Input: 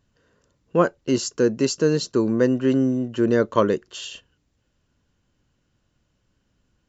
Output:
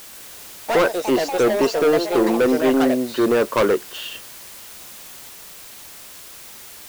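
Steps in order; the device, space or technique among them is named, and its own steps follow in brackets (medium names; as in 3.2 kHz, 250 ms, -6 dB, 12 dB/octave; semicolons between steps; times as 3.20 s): aircraft radio (band-pass 350–2600 Hz; hard clipper -21.5 dBFS, distortion -7 dB; white noise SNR 18 dB); ever faster or slower copies 132 ms, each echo +5 st, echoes 2, each echo -6 dB; trim +8.5 dB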